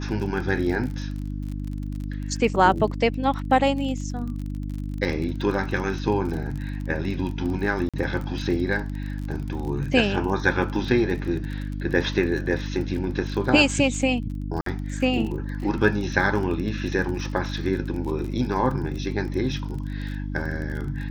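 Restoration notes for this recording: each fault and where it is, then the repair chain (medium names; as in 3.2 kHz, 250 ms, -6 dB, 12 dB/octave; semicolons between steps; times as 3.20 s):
crackle 33 per s -31 dBFS
hum 50 Hz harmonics 6 -30 dBFS
7.89–7.94 s: dropout 46 ms
14.61–14.66 s: dropout 53 ms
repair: de-click; de-hum 50 Hz, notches 6; interpolate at 7.89 s, 46 ms; interpolate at 14.61 s, 53 ms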